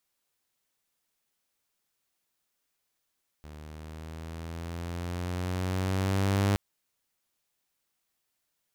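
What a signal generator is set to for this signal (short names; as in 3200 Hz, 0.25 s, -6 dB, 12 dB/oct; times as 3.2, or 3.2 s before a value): gliding synth tone saw, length 3.12 s, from 75.2 Hz, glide +5 st, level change +21.5 dB, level -19.5 dB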